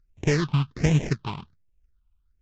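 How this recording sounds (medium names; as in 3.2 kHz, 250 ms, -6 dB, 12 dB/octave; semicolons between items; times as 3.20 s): aliases and images of a low sample rate 1.4 kHz, jitter 20%; phasing stages 6, 1.3 Hz, lowest notch 460–1300 Hz; Vorbis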